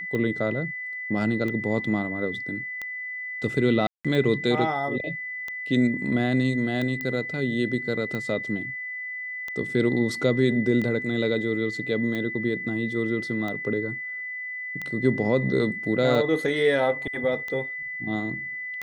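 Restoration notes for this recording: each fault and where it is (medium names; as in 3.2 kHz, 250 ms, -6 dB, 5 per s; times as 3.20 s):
tick 45 rpm -19 dBFS
whine 2 kHz -31 dBFS
3.87–4.05 s: dropout 176 ms
7.01 s: pop -17 dBFS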